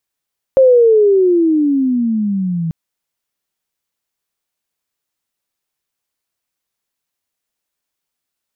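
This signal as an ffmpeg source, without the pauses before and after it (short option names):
-f lavfi -i "aevalsrc='pow(10,(-4.5-11.5*t/2.14)/20)*sin(2*PI*540*2.14/log(160/540)*(exp(log(160/540)*t/2.14)-1))':d=2.14:s=44100"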